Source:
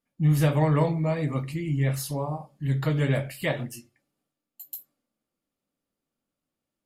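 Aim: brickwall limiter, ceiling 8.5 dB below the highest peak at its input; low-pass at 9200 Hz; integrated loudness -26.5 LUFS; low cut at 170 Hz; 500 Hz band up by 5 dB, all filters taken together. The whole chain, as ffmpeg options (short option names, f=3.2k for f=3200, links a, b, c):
-af "highpass=170,lowpass=9.2k,equalizer=f=500:t=o:g=6,volume=2dB,alimiter=limit=-15.5dB:level=0:latency=1"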